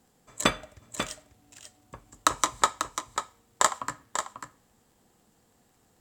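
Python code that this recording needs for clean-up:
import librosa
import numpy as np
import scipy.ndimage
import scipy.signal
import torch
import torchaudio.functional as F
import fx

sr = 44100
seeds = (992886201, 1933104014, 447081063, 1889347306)

y = fx.fix_declick_ar(x, sr, threshold=6.5)
y = fx.fix_echo_inverse(y, sr, delay_ms=542, level_db=-8.0)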